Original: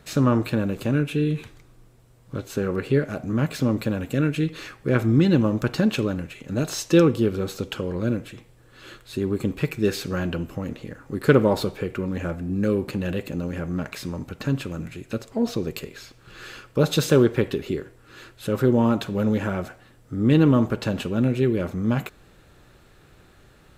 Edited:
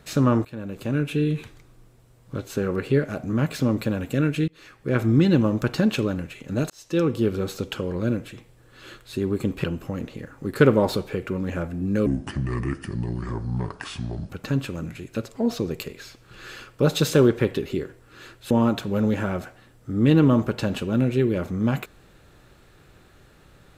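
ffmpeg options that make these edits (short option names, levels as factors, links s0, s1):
-filter_complex "[0:a]asplit=8[s0][s1][s2][s3][s4][s5][s6][s7];[s0]atrim=end=0.45,asetpts=PTS-STARTPTS,afade=t=out:st=0.446:d=0.004:c=hsin:silence=0.105925[s8];[s1]atrim=start=0.45:end=4.48,asetpts=PTS-STARTPTS,afade=t=in:d=0.67:silence=0.105925,afade=t=out:st=4.026:d=0.004:c=hsin:silence=0.0668344[s9];[s2]atrim=start=4.48:end=6.7,asetpts=PTS-STARTPTS,afade=t=in:d=0.58:silence=0.0668344,afade=t=out:st=2.216:d=0.004:c=hsin[s10];[s3]atrim=start=6.7:end=9.642,asetpts=PTS-STARTPTS,afade=t=in:d=0.59[s11];[s4]atrim=start=10.318:end=12.744[s12];[s5]atrim=start=12.74:end=14.26,asetpts=PTS-STARTPTS,asetrate=29988,aresample=44100,atrim=end_sample=98576,asetpts=PTS-STARTPTS[s13];[s6]atrim=start=14.256:end=18.472[s14];[s7]atrim=start=18.738[s15];[s8][s9][s10][s11]concat=n=4:v=0:a=1[s16];[s16][s12]acrossfade=d=0.004:c1=hsin:c2=hsin[s17];[s17][s13]acrossfade=d=0.004:c1=hsin:c2=hsin[s18];[s18][s14]acrossfade=d=0.004:c1=hsin:c2=hsin[s19];[s19][s15]acrossfade=d=0.004:c1=hsin:c2=hsin"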